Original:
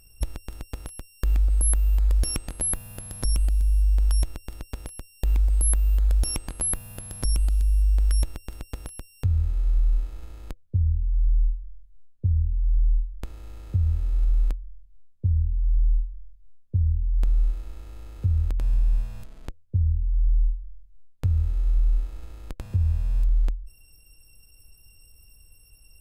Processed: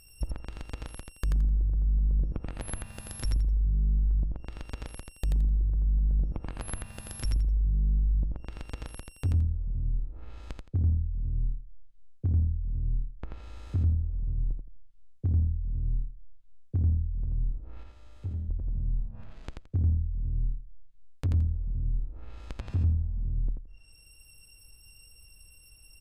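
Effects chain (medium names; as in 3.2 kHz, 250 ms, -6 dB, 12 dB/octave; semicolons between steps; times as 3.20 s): one-sided wavefolder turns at -17.5 dBFS; RIAA curve playback; low-pass that closes with the level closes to 330 Hz, closed at -3.5 dBFS; tilt EQ +4.5 dB/octave; 17.83–18.49 s: feedback comb 100 Hz, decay 0.77 s, harmonics all, mix 70%; saturation -16 dBFS, distortion -26 dB; on a send: feedback delay 85 ms, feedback 21%, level -4 dB; on the sum: trim -1 dB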